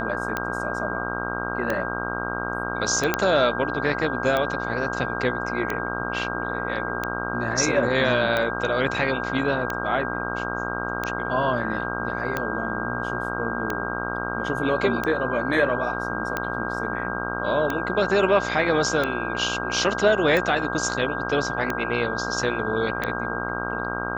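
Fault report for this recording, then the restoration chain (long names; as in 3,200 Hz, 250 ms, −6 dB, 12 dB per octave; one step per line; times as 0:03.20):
mains buzz 60 Hz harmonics 25 −30 dBFS
scratch tick 45 rpm −11 dBFS
whistle 1,600 Hz −30 dBFS
0:03.14: click −5 dBFS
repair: click removal
notch filter 1,600 Hz, Q 30
hum removal 60 Hz, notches 25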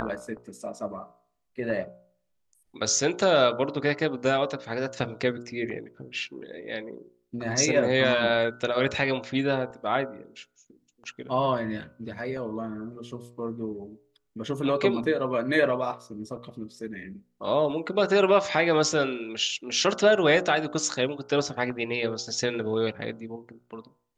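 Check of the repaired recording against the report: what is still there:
none of them is left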